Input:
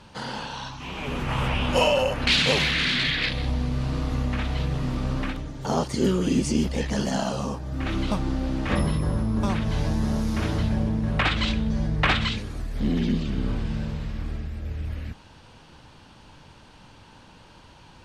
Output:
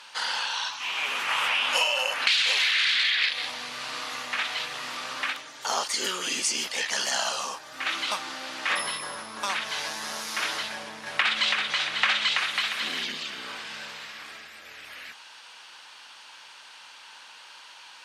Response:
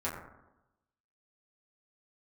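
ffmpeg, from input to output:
-filter_complex "[0:a]highpass=1400,acompressor=threshold=-30dB:ratio=6,asettb=1/sr,asplit=3[link_01][link_02][link_03];[link_01]atrim=end=10.734[link_04];[link_02]atrim=start=10.73:end=13.04,asetpts=PTS-STARTPTS,afade=type=in:duration=0.004:curve=qsin,afade=type=out:start_time=2.306:duration=0.004:curve=qsin,aecho=1:1:330|544.5|683.9|774.6|833.5:0.631|0.398|0.251|0.158|0.1,atrim=end_sample=101871[link_05];[link_03]atrim=start=13.036[link_06];[link_04][link_05]acrossfade=duration=0.004:curve1=hsin:curve2=qsin[link_07];[link_07][link_06]acrossfade=duration=0.004:curve1=qsin:curve2=hsin,volume=9dB"

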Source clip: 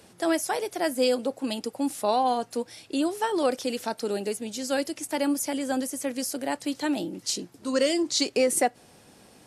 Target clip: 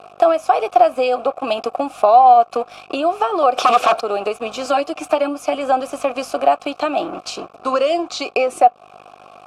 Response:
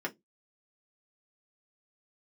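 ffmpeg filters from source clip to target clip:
-filter_complex "[0:a]acontrast=68,asplit=3[link_01][link_02][link_03];[link_01]afade=type=out:start_time=3.56:duration=0.02[link_04];[link_02]aeval=exprs='0.355*sin(PI/2*5.62*val(0)/0.355)':channel_layout=same,afade=type=in:start_time=3.56:duration=0.02,afade=type=out:start_time=3.99:duration=0.02[link_05];[link_03]afade=type=in:start_time=3.99:duration=0.02[link_06];[link_04][link_05][link_06]amix=inputs=3:normalize=0,asettb=1/sr,asplit=3[link_07][link_08][link_09];[link_07]atrim=end=4.654[link_10];[link_08]atrim=start=4.65:end=5.55,asetpts=PTS-STARTPTS,afade=type=in:duration=0.004:curve=qsin,afade=type=out:start_time=0.896:duration=0.004:curve=qsin,aecho=1:1:6.6:0.93,atrim=end_sample=39690[link_11];[link_09]atrim=start=5.546[link_12];[link_10][link_11]acrossfade=duration=0.004:curve1=hsin:curve2=qsin[link_13];[link_13][link_12]acrossfade=duration=0.004:curve1=qsin:curve2=hsin,aeval=exprs='val(0)+0.0112*(sin(2*PI*50*n/s)+sin(2*PI*2*50*n/s)/2+sin(2*PI*3*50*n/s)/3+sin(2*PI*4*50*n/s)/4+sin(2*PI*5*50*n/s)/5)':channel_layout=same,asplit=2[link_14][link_15];[1:a]atrim=start_sample=2205[link_16];[link_15][link_16]afir=irnorm=-1:irlink=0,volume=-23.5dB[link_17];[link_14][link_17]amix=inputs=2:normalize=0,aeval=exprs='sgn(val(0))*max(abs(val(0))-0.0126,0)':channel_layout=same,equalizer=frequency=1300:width_type=o:width=0.31:gain=8,acompressor=threshold=-25dB:ratio=6,asplit=3[link_18][link_19][link_20];[link_18]bandpass=frequency=730:width_type=q:width=8,volume=0dB[link_21];[link_19]bandpass=frequency=1090:width_type=q:width=8,volume=-6dB[link_22];[link_20]bandpass=frequency=2440:width_type=q:width=8,volume=-9dB[link_23];[link_21][link_22][link_23]amix=inputs=3:normalize=0,alimiter=level_in=24.5dB:limit=-1dB:release=50:level=0:latency=1,volume=-1dB"

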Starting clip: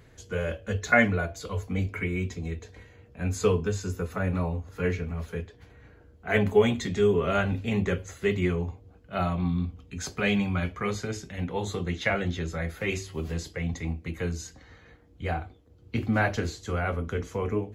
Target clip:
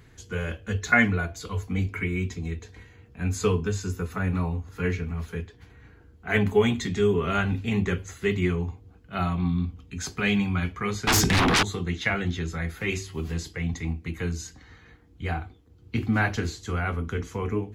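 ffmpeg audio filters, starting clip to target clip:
ffmpeg -i in.wav -filter_complex "[0:a]asettb=1/sr,asplit=3[link_01][link_02][link_03];[link_01]atrim=end=11.074[link_04];[link_02]atrim=start=11.07:end=11.63,asetpts=PTS-STARTPTS,afade=type=in:duration=0.004:curve=qsin,afade=type=out:start_time=0.556:duration=0.004:curve=qsin,aeval=exprs='0.126*sin(PI/2*8.91*val(0)/0.126)':channel_layout=same[link_05];[link_03]atrim=start=11.626[link_06];[link_04][link_05]acrossfade=duration=0.004:curve1=hsin:curve2=qsin[link_07];[link_07][link_06]acrossfade=duration=0.004:curve1=qsin:curve2=hsin,equalizer=frequency=570:width_type=o:width=0.47:gain=-11,volume=2dB" out.wav

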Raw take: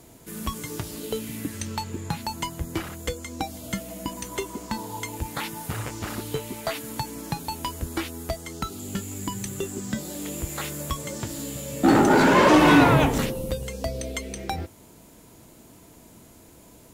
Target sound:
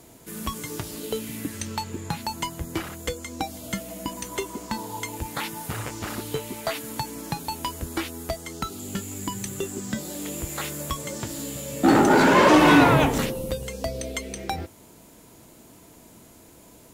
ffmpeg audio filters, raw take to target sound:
ffmpeg -i in.wav -af "lowshelf=frequency=160:gain=-4,volume=1dB" out.wav

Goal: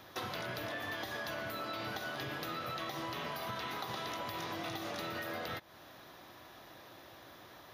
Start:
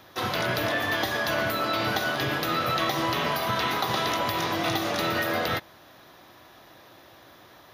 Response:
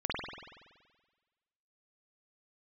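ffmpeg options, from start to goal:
-af "acompressor=threshold=-35dB:ratio=6,volume=-3dB"

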